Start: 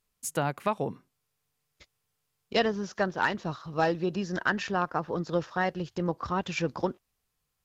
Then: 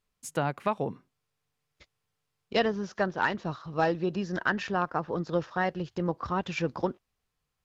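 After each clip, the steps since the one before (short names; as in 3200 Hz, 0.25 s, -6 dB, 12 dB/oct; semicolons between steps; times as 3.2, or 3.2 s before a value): high shelf 7600 Hz -12 dB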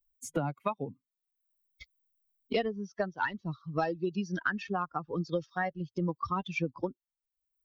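per-bin expansion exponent 2; three-band squash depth 100%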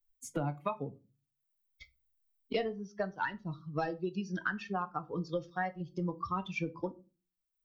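shoebox room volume 120 m³, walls furnished, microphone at 0.43 m; gain -3.5 dB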